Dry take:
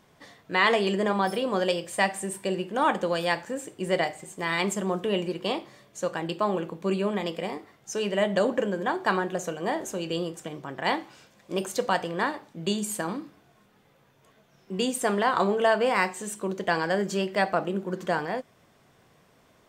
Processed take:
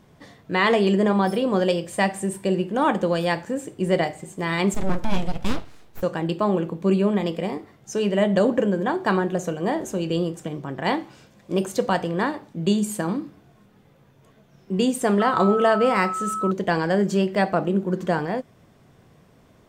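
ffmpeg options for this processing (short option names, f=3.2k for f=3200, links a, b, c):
-filter_complex "[0:a]asettb=1/sr,asplit=3[a][b][c];[a]atrim=end=4.744[d];[b]atrim=start=4.74:end=6.03,asetpts=PTS-STARTPTS,afade=t=in:d=0.004:c=qsin,afade=t=out:st=1.286:d=0.004:c=qsin,aeval=exprs='abs(val(0))':c=same[e];[c]atrim=start=6.026[f];[d][e]acrossfade=d=0.004:c1=hsin:c2=qsin[g];[g][f]acrossfade=d=0.004:c1=qsin:c2=hsin,asettb=1/sr,asplit=3[h][i][j];[h]atrim=end=15.204[k];[i]atrim=start=15.2:end=16.51,asetpts=PTS-STARTPTS,afade=t=in:d=0.004:c=qsin,afade=t=out:st=1.306:d=0.004:c=qsin,aeval=exprs='val(0)+0.0501*sin(2*PI*1300*n/s)':c=same[l];[j]atrim=start=16.506[m];[k][l]acrossfade=d=0.004:c1=hsin:c2=qsin[n];[n][m]acrossfade=d=0.004:c1=qsin:c2=hsin,lowshelf=f=400:g=11"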